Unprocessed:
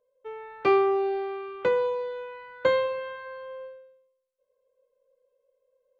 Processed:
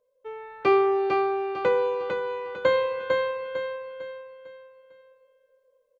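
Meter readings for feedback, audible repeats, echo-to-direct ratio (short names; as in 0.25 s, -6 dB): 39%, 4, -3.5 dB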